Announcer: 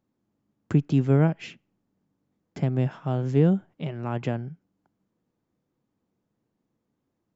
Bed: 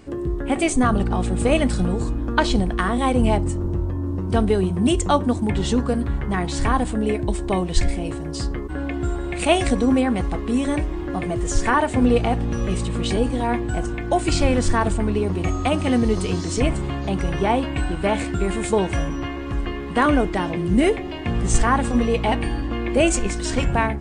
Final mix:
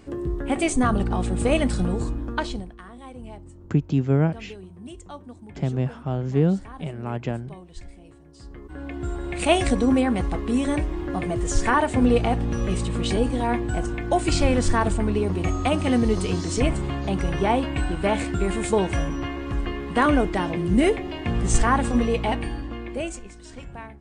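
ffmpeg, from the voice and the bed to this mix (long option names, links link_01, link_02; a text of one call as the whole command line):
ffmpeg -i stem1.wav -i stem2.wav -filter_complex "[0:a]adelay=3000,volume=0dB[link_01];[1:a]volume=17.5dB,afade=type=out:start_time=2.03:duration=0.71:silence=0.112202,afade=type=in:start_time=8.38:duration=1.13:silence=0.1,afade=type=out:start_time=21.95:duration=1.3:silence=0.141254[link_02];[link_01][link_02]amix=inputs=2:normalize=0" out.wav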